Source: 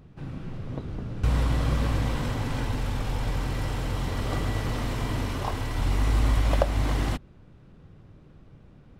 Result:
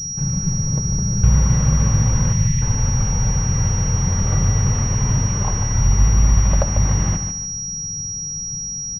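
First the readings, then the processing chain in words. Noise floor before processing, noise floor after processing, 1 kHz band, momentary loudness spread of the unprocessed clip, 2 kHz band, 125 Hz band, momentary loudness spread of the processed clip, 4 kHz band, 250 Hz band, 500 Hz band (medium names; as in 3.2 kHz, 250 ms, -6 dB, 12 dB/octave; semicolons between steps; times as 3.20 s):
-52 dBFS, -27 dBFS, +2.5 dB, 11 LU, +1.5 dB, +11.5 dB, 8 LU, no reading, +8.5 dB, +1.0 dB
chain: band-stop 680 Hz, Q 12; in parallel at -1.5 dB: compression, threshold -31 dBFS, peak gain reduction 13.5 dB; on the sum: spectral selection erased 2.33–2.62 s, 230–1700 Hz; resonant low shelf 220 Hz +6.5 dB, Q 3; on a send: feedback delay 146 ms, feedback 33%, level -8 dB; on the sum: class-D stage that switches slowly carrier 5.7 kHz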